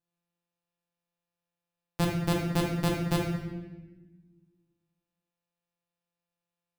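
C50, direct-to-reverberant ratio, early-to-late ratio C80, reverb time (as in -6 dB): 3.0 dB, -1.5 dB, 5.5 dB, 1.2 s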